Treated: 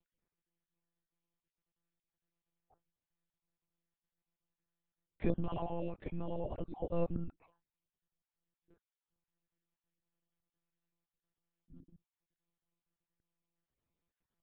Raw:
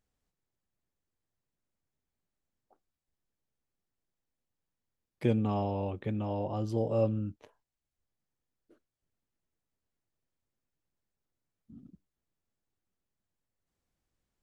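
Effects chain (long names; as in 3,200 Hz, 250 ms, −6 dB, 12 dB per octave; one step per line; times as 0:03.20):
time-frequency cells dropped at random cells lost 27%
one-pitch LPC vocoder at 8 kHz 170 Hz
level −4 dB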